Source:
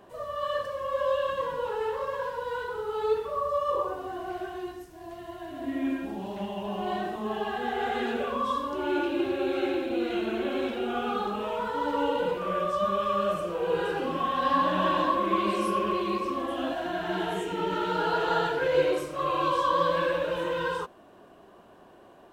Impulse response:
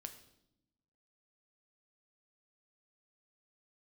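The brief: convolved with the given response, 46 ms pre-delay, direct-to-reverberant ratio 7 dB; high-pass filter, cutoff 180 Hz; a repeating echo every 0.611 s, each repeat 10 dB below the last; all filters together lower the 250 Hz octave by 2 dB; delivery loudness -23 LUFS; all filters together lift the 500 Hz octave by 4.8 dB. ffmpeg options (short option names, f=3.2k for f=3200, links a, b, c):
-filter_complex "[0:a]highpass=180,equalizer=f=250:t=o:g=-6,equalizer=f=500:t=o:g=7,aecho=1:1:611|1222|1833|2444:0.316|0.101|0.0324|0.0104,asplit=2[a][b];[1:a]atrim=start_sample=2205,adelay=46[c];[b][c]afir=irnorm=-1:irlink=0,volume=-2.5dB[d];[a][d]amix=inputs=2:normalize=0,volume=2dB"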